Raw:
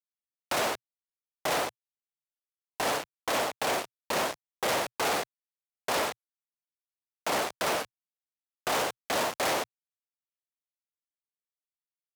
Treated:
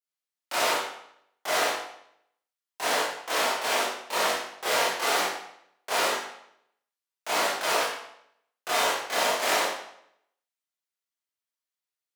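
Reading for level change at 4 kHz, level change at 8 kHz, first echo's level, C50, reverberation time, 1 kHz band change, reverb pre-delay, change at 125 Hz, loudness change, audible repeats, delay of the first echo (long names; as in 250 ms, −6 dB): +5.5 dB, +4.5 dB, no echo audible, 0.5 dB, 0.70 s, +3.5 dB, 21 ms, can't be measured, +4.0 dB, no echo audible, no echo audible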